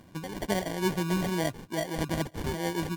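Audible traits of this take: phasing stages 2, 2.3 Hz, lowest notch 650–1300 Hz; aliases and images of a low sample rate 1.3 kHz, jitter 0%; MP3

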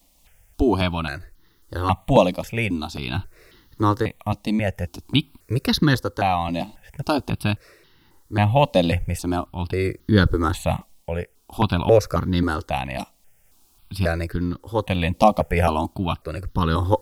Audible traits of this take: a quantiser's noise floor 12-bit, dither triangular; tremolo triangle 0.6 Hz, depth 60%; notches that jump at a steady rate 3.7 Hz 400–2400 Hz

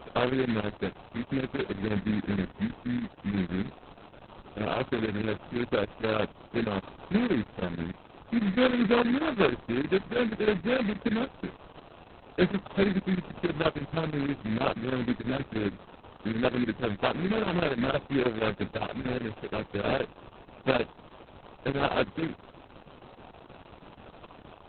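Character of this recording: a quantiser's noise floor 8-bit, dither triangular; chopped level 6.3 Hz, depth 65%, duty 85%; aliases and images of a low sample rate 2 kHz, jitter 20%; Opus

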